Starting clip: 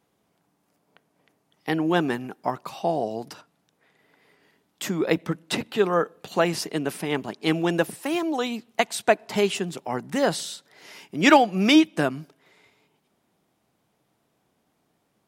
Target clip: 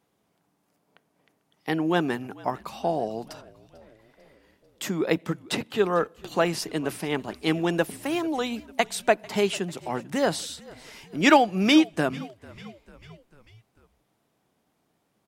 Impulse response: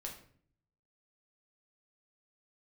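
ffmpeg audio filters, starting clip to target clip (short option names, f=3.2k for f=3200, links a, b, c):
-filter_complex "[0:a]asplit=5[a][b][c][d][e];[b]adelay=445,afreqshift=-51,volume=-22dB[f];[c]adelay=890,afreqshift=-102,volume=-26.7dB[g];[d]adelay=1335,afreqshift=-153,volume=-31.5dB[h];[e]adelay=1780,afreqshift=-204,volume=-36.2dB[i];[a][f][g][h][i]amix=inputs=5:normalize=0,volume=-1.5dB"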